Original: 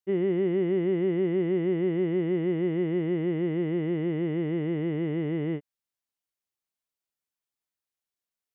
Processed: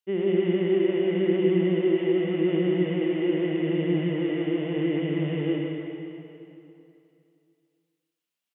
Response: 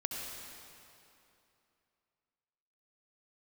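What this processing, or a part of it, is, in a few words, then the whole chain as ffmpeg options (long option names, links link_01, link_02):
PA in a hall: -filter_complex "[0:a]highpass=140,equalizer=frequency=2900:width_type=o:width=0.67:gain=7.5,aecho=1:1:157:0.398[link_01];[1:a]atrim=start_sample=2205[link_02];[link_01][link_02]afir=irnorm=-1:irlink=0"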